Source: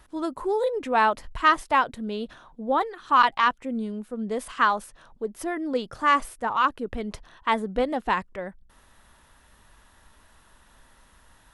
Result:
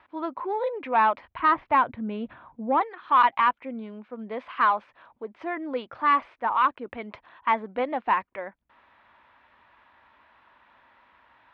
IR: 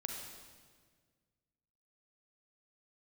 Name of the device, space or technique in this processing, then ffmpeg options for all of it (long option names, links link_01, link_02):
overdrive pedal into a guitar cabinet: -filter_complex "[0:a]asettb=1/sr,asplit=3[link_01][link_02][link_03];[link_01]atrim=end=1.394[link_04];[link_02]atrim=start=1.39:end=2.81,asetpts=PTS-STARTPTS,afade=type=in:duration=0.004:curve=qsin,afade=type=out:start_time=1.416:duration=0.004:curve=qsin,bass=frequency=250:gain=14,treble=frequency=4000:gain=-15[link_05];[link_03]atrim=start=2.806[link_06];[link_04][link_05]acrossfade=duration=0.004:curve1=hsin:curve2=qsin[link_07];[link_07][link_06]acrossfade=duration=0.004:curve1=qsin:curve2=hsin,asplit=2[link_08][link_09];[link_09]highpass=frequency=720:poles=1,volume=12dB,asoftclip=type=tanh:threshold=-6dB[link_10];[link_08][link_10]amix=inputs=2:normalize=0,lowpass=frequency=1200:poles=1,volume=-6dB,highpass=95,equalizer=frequency=170:width_type=q:width=4:gain=-10,equalizer=frequency=430:width_type=q:width=4:gain=-5,equalizer=frequency=980:width_type=q:width=4:gain=4,equalizer=frequency=2300:width_type=q:width=4:gain=8,lowpass=frequency=3800:width=0.5412,lowpass=frequency=3800:width=1.3066,volume=-3.5dB"